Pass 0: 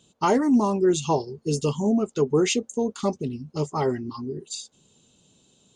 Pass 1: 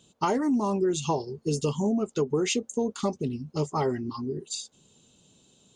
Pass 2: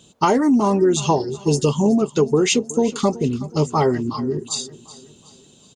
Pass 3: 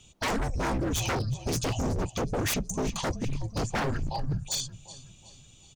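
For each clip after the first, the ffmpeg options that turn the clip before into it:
-af "acompressor=threshold=-22dB:ratio=6"
-af "aecho=1:1:372|744|1116|1488:0.126|0.0541|0.0233|0.01,volume=9dB"
-af "afreqshift=-260,aeval=exprs='0.112*(abs(mod(val(0)/0.112+3,4)-2)-1)':c=same,volume=-4dB"

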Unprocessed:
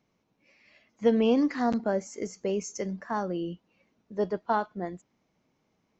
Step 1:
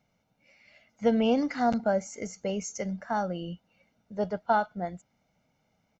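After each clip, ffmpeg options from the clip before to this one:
-af "aecho=1:1:1.4:0.62"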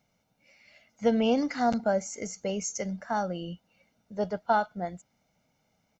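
-af "bass=f=250:g=-1,treble=f=4k:g=5"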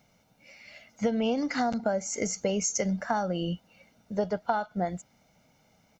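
-af "acompressor=threshold=-32dB:ratio=12,volume=8dB"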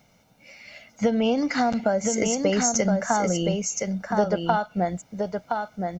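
-af "aecho=1:1:1019:0.596,volume=5dB"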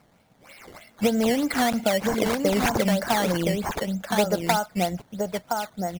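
-af "acrusher=samples=12:mix=1:aa=0.000001:lfo=1:lforange=12:lforate=3.2"

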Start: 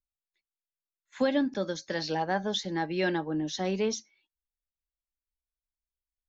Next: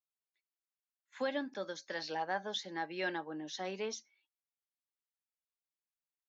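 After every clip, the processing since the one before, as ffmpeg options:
-af "highpass=f=1.4k:p=1,highshelf=f=2.4k:g=-10.5,volume=1dB"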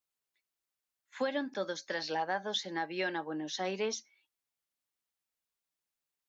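-af "alimiter=level_in=4dB:limit=-24dB:level=0:latency=1:release=211,volume=-4dB,volume=5dB"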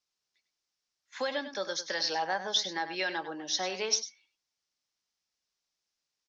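-filter_complex "[0:a]acrossover=split=430[a][b];[a]acompressor=threshold=-48dB:ratio=6[c];[c][b]amix=inputs=2:normalize=0,lowpass=f=5.5k:t=q:w=3.4,asplit=2[d][e];[e]adelay=99.13,volume=-11dB,highshelf=f=4k:g=-2.23[f];[d][f]amix=inputs=2:normalize=0,volume=2dB"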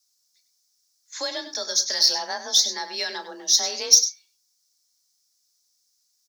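-filter_complex "[0:a]aexciter=amount=3.7:drive=9.5:freq=4.1k,afreqshift=33,asplit=2[a][b];[b]adelay=34,volume=-12.5dB[c];[a][c]amix=inputs=2:normalize=0"

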